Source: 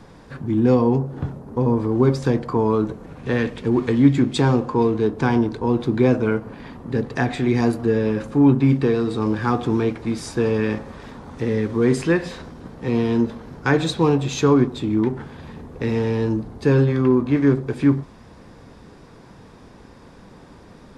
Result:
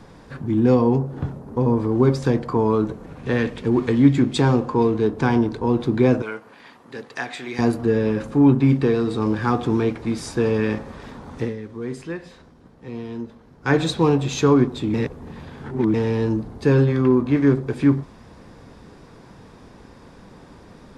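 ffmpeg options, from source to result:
-filter_complex "[0:a]asettb=1/sr,asplit=3[a][b][c];[a]atrim=end=6.224[d];[b]atrim=start=6.22:end=7.59,asetpts=PTS-STARTPTS,afade=t=in:d=0.004:c=qsin,afade=t=out:st=1.366:d=0.004:c=qsin,highpass=f=1.4k:p=1[e];[c]atrim=start=7.586[f];[d][e]acrossfade=d=0.004:c1=hsin:c2=qsin[g];[g][f]acrossfade=d=0.004:c1=qsin:c2=hsin,asplit=5[h][i][j][k][l];[h]atrim=end=11.58,asetpts=PTS-STARTPTS,afade=t=out:st=11.44:d=0.14:c=qua:silence=0.251189[m];[i]atrim=start=11.58:end=13.57,asetpts=PTS-STARTPTS,volume=-12dB[n];[j]atrim=start=13.57:end=14.942,asetpts=PTS-STARTPTS,afade=t=in:d=0.14:c=qua:silence=0.251189[o];[k]atrim=start=14.938:end=15.942,asetpts=PTS-STARTPTS,areverse[p];[l]atrim=start=15.938[q];[m][n][o]concat=n=3:v=0:a=1[r];[r][p]acrossfade=d=0.004:c1=hsin:c2=hsin[s];[s][q]acrossfade=d=0.004:c1=hsin:c2=hsin"

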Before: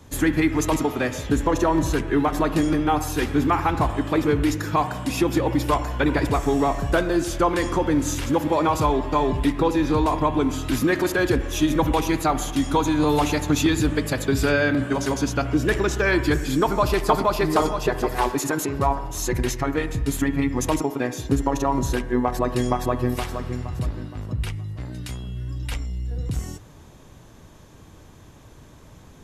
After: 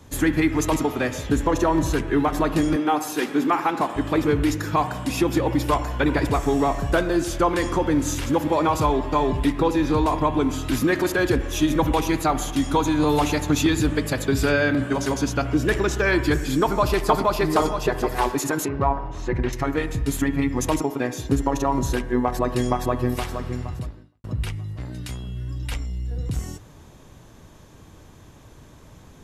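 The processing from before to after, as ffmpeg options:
-filter_complex "[0:a]asettb=1/sr,asplit=3[a][b][c];[a]atrim=end=2.764[d];[b]atrim=start=2.76:end=3.96,asetpts=PTS-STARTPTS,afade=t=in:d=0.004:c=qsin,afade=t=out:st=1.196:d=0.004:c=qsin,highpass=f=200:w=0.5412,highpass=f=200:w=1.3066[e];[c]atrim=start=3.956[f];[d][e]acrossfade=d=0.004:c1=hsin:c2=qsin[g];[g][f]acrossfade=d=0.004:c1=qsin:c2=hsin,asettb=1/sr,asplit=3[h][i][j];[h]atrim=end=18.684[k];[i]atrim=start=18.68:end=19.53,asetpts=PTS-STARTPTS,afade=t=in:d=0.004:c=qsin,afade=t=out:st=0.846:d=0.004:c=qsin,lowpass=2.4k[l];[j]atrim=start=19.526[m];[k][l]acrossfade=d=0.004:c1=hsin:c2=qsin[n];[n][m]acrossfade=d=0.004:c1=qsin:c2=hsin,asplit=2[o][p];[o]atrim=end=24.24,asetpts=PTS-STARTPTS,afade=t=out:st=23.69:d=0.55:c=qua[q];[p]atrim=start=24.24,asetpts=PTS-STARTPTS,afade=t=in:d=0.004:c=hsin[r];[q][r]concat=n=2:v=0:a=1"

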